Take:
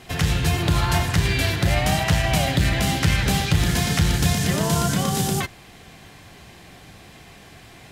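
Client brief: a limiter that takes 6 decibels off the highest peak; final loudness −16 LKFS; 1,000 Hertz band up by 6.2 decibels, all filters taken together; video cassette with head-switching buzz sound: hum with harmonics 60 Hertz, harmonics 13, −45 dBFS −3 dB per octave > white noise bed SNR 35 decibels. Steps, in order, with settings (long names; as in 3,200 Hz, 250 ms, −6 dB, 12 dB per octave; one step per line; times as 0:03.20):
parametric band 1,000 Hz +8.5 dB
brickwall limiter −11.5 dBFS
hum with harmonics 60 Hz, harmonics 13, −45 dBFS −3 dB per octave
white noise bed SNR 35 dB
level +5.5 dB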